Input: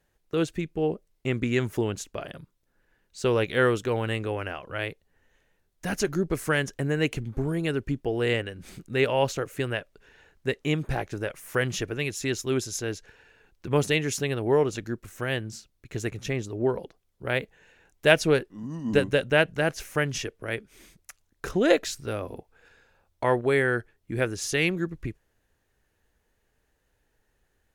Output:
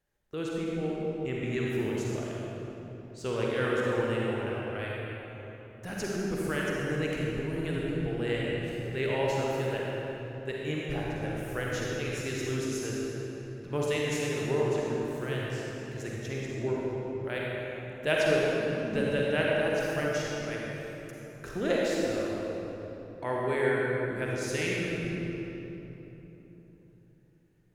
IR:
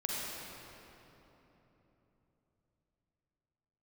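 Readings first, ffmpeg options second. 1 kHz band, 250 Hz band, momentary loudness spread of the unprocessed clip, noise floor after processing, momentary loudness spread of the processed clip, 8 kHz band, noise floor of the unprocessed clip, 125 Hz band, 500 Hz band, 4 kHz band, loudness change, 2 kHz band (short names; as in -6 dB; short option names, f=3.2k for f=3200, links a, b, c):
-4.0 dB, -3.0 dB, 13 LU, -54 dBFS, 12 LU, -6.0 dB, -73 dBFS, -3.5 dB, -3.0 dB, -5.0 dB, -4.0 dB, -4.5 dB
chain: -filter_complex "[1:a]atrim=start_sample=2205[a];[0:a][a]afir=irnorm=-1:irlink=0,volume=-9dB"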